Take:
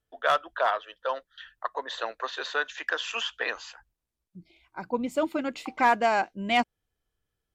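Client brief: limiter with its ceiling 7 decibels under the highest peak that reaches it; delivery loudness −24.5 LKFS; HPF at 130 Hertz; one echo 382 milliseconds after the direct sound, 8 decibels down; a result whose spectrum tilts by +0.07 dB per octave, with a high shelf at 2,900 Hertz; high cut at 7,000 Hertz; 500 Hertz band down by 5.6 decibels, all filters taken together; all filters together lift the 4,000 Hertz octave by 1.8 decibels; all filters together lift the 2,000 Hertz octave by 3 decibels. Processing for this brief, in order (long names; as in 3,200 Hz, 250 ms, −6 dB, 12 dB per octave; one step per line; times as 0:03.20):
high-pass filter 130 Hz
low-pass filter 7,000 Hz
parametric band 500 Hz −8 dB
parametric band 2,000 Hz +6 dB
high-shelf EQ 2,900 Hz −7 dB
parametric band 4,000 Hz +5.5 dB
brickwall limiter −17.5 dBFS
single-tap delay 382 ms −8 dB
level +6.5 dB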